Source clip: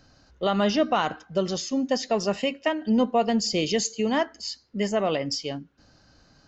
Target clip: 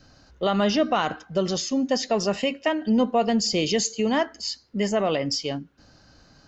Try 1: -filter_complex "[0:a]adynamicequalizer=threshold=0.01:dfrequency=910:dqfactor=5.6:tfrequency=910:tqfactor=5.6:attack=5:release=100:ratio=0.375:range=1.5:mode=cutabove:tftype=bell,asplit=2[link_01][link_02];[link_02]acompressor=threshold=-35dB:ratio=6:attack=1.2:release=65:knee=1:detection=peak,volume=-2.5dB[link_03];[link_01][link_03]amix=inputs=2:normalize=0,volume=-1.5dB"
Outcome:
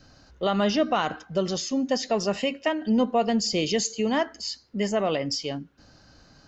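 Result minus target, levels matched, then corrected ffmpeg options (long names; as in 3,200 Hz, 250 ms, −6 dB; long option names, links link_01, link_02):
downward compressor: peak gain reduction +8.5 dB
-filter_complex "[0:a]adynamicequalizer=threshold=0.01:dfrequency=910:dqfactor=5.6:tfrequency=910:tqfactor=5.6:attack=5:release=100:ratio=0.375:range=1.5:mode=cutabove:tftype=bell,asplit=2[link_01][link_02];[link_02]acompressor=threshold=-25dB:ratio=6:attack=1.2:release=65:knee=1:detection=peak,volume=-2.5dB[link_03];[link_01][link_03]amix=inputs=2:normalize=0,volume=-1.5dB"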